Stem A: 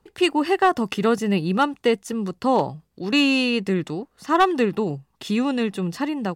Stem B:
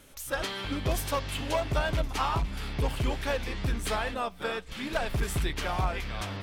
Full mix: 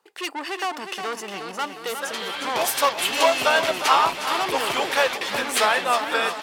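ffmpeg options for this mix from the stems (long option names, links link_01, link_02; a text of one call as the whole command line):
ffmpeg -i stem1.wav -i stem2.wav -filter_complex "[0:a]asoftclip=type=tanh:threshold=-23dB,volume=2dB,asplit=3[link_01][link_02][link_03];[link_02]volume=-7.5dB[link_04];[1:a]dynaudnorm=framelen=140:gausssize=11:maxgain=12dB,adelay=1700,volume=1dB,asplit=2[link_05][link_06];[link_06]volume=-11.5dB[link_07];[link_03]apad=whole_len=358506[link_08];[link_05][link_08]sidechaingate=range=-33dB:threshold=-52dB:ratio=16:detection=peak[link_09];[link_04][link_07]amix=inputs=2:normalize=0,aecho=0:1:359|718|1077|1436|1795|2154|2513|2872:1|0.56|0.314|0.176|0.0983|0.0551|0.0308|0.0173[link_10];[link_01][link_09][link_10]amix=inputs=3:normalize=0,highpass=610" out.wav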